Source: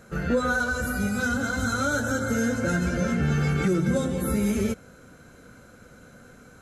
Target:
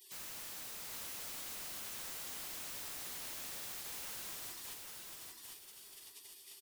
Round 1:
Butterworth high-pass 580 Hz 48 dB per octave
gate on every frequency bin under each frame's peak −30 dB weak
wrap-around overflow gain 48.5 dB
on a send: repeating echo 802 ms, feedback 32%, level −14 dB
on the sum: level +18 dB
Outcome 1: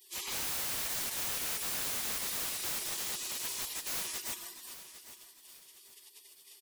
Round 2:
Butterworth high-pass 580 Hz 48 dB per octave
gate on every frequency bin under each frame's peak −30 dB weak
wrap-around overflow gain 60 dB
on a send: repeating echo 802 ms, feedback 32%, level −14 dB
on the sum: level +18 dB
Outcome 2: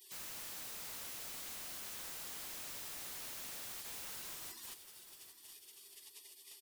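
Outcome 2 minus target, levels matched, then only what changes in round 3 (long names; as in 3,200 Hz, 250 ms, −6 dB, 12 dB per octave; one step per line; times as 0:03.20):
echo-to-direct −10 dB
change: repeating echo 802 ms, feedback 32%, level −4 dB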